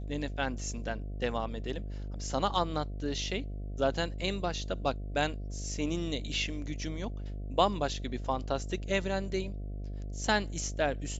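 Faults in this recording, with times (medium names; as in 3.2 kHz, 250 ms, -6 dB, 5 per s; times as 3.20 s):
buzz 50 Hz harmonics 14 -38 dBFS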